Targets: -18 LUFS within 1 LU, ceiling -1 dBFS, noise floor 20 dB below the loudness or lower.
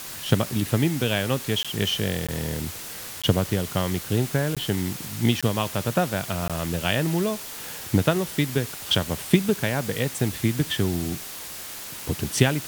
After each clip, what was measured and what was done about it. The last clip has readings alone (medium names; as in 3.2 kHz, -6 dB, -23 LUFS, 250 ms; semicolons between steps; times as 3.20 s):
dropouts 6; longest dropout 16 ms; noise floor -37 dBFS; noise floor target -45 dBFS; loudness -25.0 LUFS; peak level -3.5 dBFS; loudness target -18.0 LUFS
-> interpolate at 1.63/2.27/3.22/4.55/5.41/6.48 s, 16 ms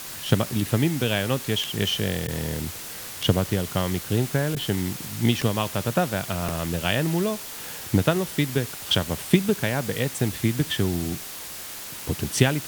dropouts 0; noise floor -37 dBFS; noise floor target -45 dBFS
-> noise reduction 8 dB, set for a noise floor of -37 dBFS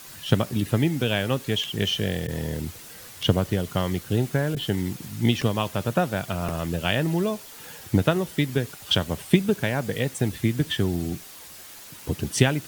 noise floor -44 dBFS; noise floor target -46 dBFS
-> noise reduction 6 dB, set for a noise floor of -44 dBFS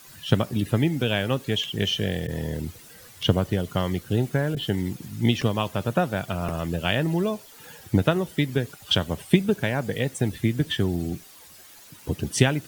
noise floor -48 dBFS; loudness -25.5 LUFS; peak level -3.5 dBFS; loudness target -18.0 LUFS
-> trim +7.5 dB; peak limiter -1 dBFS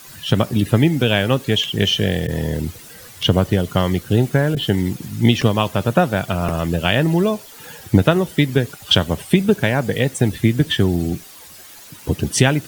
loudness -18.5 LUFS; peak level -1.0 dBFS; noise floor -41 dBFS